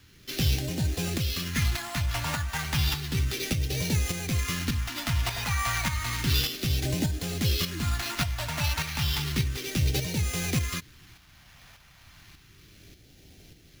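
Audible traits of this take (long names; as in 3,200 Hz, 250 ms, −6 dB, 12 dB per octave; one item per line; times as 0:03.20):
aliases and images of a low sample rate 8,400 Hz, jitter 0%
phaser sweep stages 2, 0.32 Hz, lowest notch 350–1,100 Hz
tremolo saw up 1.7 Hz, depth 50%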